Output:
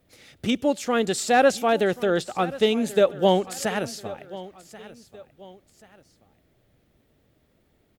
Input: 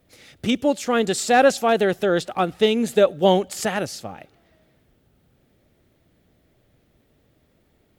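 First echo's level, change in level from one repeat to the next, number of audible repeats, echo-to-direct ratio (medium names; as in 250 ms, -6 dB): -18.0 dB, -8.5 dB, 2, -17.5 dB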